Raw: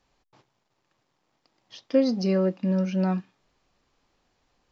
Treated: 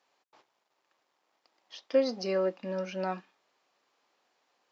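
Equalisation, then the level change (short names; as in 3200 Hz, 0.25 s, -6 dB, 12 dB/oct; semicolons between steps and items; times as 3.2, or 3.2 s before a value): HPF 470 Hz 12 dB/oct; high shelf 4700 Hz -4 dB; 0.0 dB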